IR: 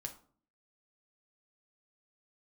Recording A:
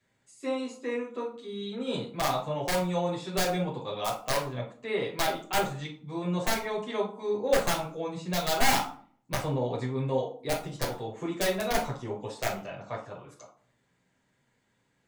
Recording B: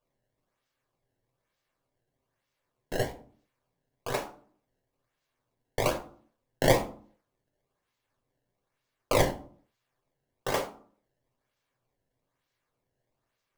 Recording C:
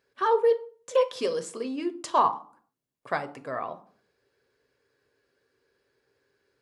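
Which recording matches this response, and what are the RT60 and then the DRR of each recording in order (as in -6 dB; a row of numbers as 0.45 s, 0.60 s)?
B; 0.50 s, 0.50 s, 0.50 s; -6.0 dB, 3.5 dB, 8.5 dB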